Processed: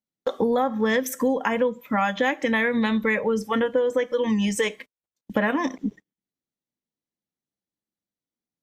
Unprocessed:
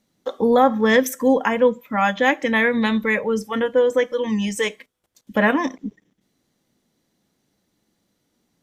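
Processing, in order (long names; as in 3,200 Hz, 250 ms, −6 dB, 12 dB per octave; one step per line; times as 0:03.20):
0:02.82–0:05.45: high-shelf EQ 4,600 Hz −3.5 dB
noise gate −41 dBFS, range −29 dB
downward compressor, threshold −23 dBFS, peak gain reduction 12.5 dB
level +3.5 dB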